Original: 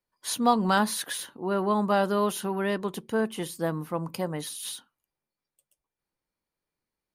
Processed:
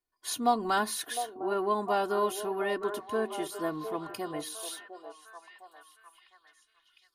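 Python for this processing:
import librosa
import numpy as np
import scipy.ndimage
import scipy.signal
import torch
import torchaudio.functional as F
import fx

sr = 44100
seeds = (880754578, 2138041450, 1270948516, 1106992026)

y = x + 0.74 * np.pad(x, (int(2.8 * sr / 1000.0), 0))[:len(x)]
y = fx.echo_stepped(y, sr, ms=706, hz=560.0, octaves=0.7, feedback_pct=70, wet_db=-7.0)
y = F.gain(torch.from_numpy(y), -5.5).numpy()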